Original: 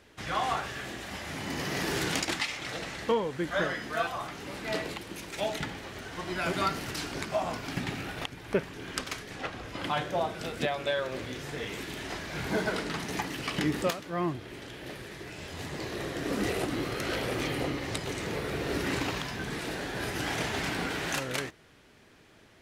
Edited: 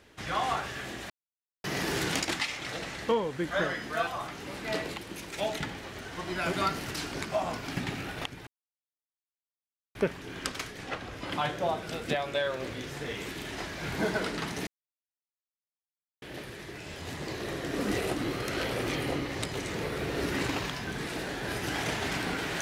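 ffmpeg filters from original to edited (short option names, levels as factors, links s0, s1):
-filter_complex "[0:a]asplit=6[s0][s1][s2][s3][s4][s5];[s0]atrim=end=1.1,asetpts=PTS-STARTPTS,afade=t=out:st=1.096:d=0.004:c=hsin[s6];[s1]atrim=start=1.1:end=1.64,asetpts=PTS-STARTPTS,volume=0[s7];[s2]atrim=start=1.64:end=8.47,asetpts=PTS-STARTPTS,afade=t=in:d=0.004:c=hsin,afade=t=out:st=6.826:d=0.004:c=hsin,apad=pad_dur=1.48[s8];[s3]atrim=start=8.47:end=13.19,asetpts=PTS-STARTPTS,afade=t=in:d=0.004:c=hsin,afade=t=out:st=4.716:d=0.004:c=hsin[s9];[s4]atrim=start=13.19:end=14.74,asetpts=PTS-STARTPTS,volume=0[s10];[s5]atrim=start=14.74,asetpts=PTS-STARTPTS,afade=t=in:d=0.004:c=hsin[s11];[s6][s7][s8][s9][s10][s11]concat=n=6:v=0:a=1"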